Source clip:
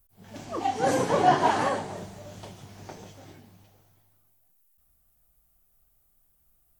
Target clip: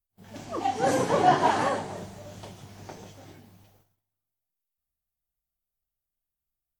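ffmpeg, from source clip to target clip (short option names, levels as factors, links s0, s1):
-af "agate=range=0.0891:threshold=0.00112:ratio=16:detection=peak"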